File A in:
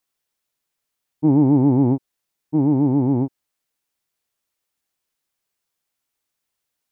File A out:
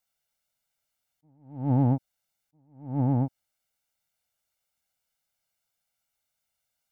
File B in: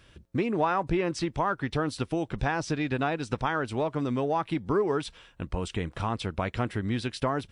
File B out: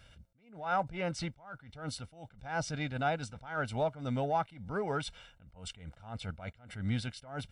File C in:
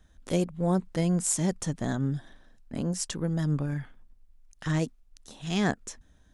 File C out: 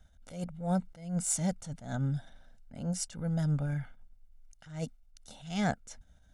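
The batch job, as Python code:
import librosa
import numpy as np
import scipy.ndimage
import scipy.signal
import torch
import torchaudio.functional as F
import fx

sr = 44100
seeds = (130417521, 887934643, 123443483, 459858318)

p1 = x + 0.72 * np.pad(x, (int(1.4 * sr / 1000.0), 0))[:len(x)]
p2 = 10.0 ** (-21.5 / 20.0) * np.tanh(p1 / 10.0 ** (-21.5 / 20.0))
p3 = p1 + (p2 * 10.0 ** (-8.5 / 20.0))
p4 = fx.attack_slew(p3, sr, db_per_s=120.0)
y = p4 * 10.0 ** (-6.5 / 20.0)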